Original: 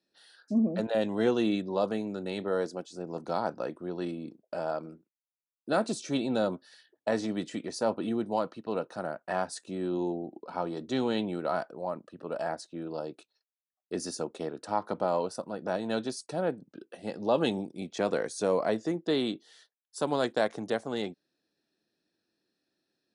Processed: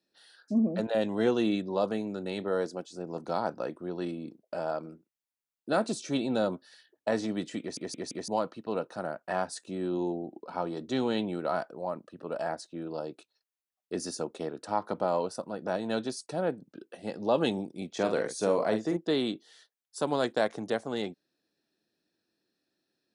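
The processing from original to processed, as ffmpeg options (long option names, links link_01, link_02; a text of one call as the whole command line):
ffmpeg -i in.wav -filter_complex "[0:a]asettb=1/sr,asplit=3[link_01][link_02][link_03];[link_01]atrim=end=17.904[link_04];[link_02]atrim=start=17.9:end=18.97,asetpts=PTS-STARTPTS,afade=type=in:duration=0.004:curve=qsin,afade=type=out:start_time=1.066:duration=0.004:curve=qsin,asplit=2[link_05][link_06];[link_06]adelay=46,volume=-7dB[link_07];[link_05][link_07]amix=inputs=2:normalize=0,atrim=end_sample=47187[link_08];[link_03]atrim=start=18.966[link_09];[link_04][link_08]acrossfade=duration=0.004:curve1=hsin:curve2=qsin[link_10];[link_10][link_09]acrossfade=duration=0.004:curve1=qsin:curve2=hsin,asplit=5[link_11][link_12][link_13][link_14][link_15];[link_11]atrim=end=7.772[link_16];[link_12]atrim=start=7.598:end=7.772[link_17];[link_13]atrim=start=7.598:end=7.772[link_18];[link_14]atrim=start=7.598:end=7.772[link_19];[link_15]atrim=start=8.278[link_20];[link_16][link_17]acrossfade=duration=0.004:curve1=hsin:curve2=hsin[link_21];[link_21][link_18]acrossfade=duration=0.004:curve1=hsin:curve2=hsin[link_22];[link_22][link_19]acrossfade=duration=0.004:curve1=hsin:curve2=hsin[link_23];[link_23][link_20]acrossfade=duration=0.004:curve1=hsin:curve2=hsin" out.wav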